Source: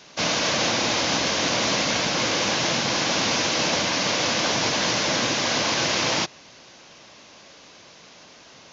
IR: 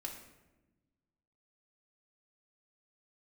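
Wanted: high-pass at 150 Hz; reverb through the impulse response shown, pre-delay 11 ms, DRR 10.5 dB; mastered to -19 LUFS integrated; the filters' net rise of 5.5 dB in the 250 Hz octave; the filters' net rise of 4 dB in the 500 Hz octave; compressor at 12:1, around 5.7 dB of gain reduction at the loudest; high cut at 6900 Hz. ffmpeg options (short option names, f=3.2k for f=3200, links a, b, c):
-filter_complex "[0:a]highpass=150,lowpass=6.9k,equalizer=f=250:t=o:g=6.5,equalizer=f=500:t=o:g=3.5,acompressor=threshold=-23dB:ratio=12,asplit=2[a][b];[1:a]atrim=start_sample=2205,adelay=11[c];[b][c]afir=irnorm=-1:irlink=0,volume=-9dB[d];[a][d]amix=inputs=2:normalize=0,volume=6.5dB"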